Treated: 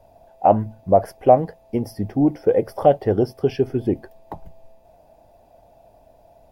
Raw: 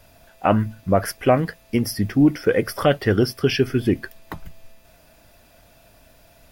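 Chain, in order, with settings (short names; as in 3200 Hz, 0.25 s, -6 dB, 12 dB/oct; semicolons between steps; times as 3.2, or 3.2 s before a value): EQ curve 260 Hz 0 dB, 820 Hz +11 dB, 1300 Hz -11 dB; gain -3.5 dB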